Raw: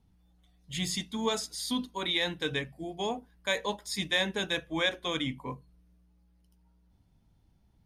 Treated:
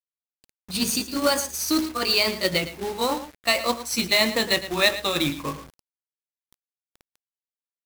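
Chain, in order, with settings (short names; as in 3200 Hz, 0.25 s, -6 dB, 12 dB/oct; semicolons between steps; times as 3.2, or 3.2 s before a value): gliding pitch shift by +5 st ending unshifted; outdoor echo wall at 19 m, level -13 dB; companded quantiser 4-bit; gain +9 dB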